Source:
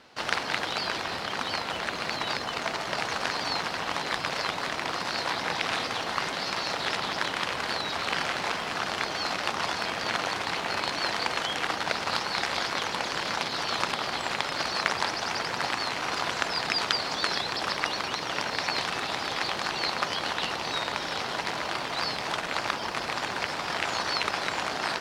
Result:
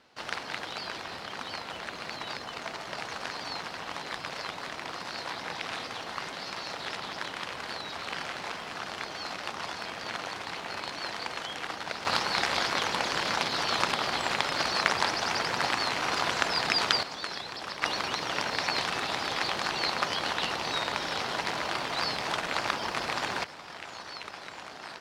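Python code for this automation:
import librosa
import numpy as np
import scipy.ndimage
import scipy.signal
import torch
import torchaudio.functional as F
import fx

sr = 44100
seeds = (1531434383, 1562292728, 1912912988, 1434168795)

y = fx.gain(x, sr, db=fx.steps((0.0, -7.0), (12.05, 1.0), (17.03, -8.0), (17.82, -0.5), (23.44, -13.0)))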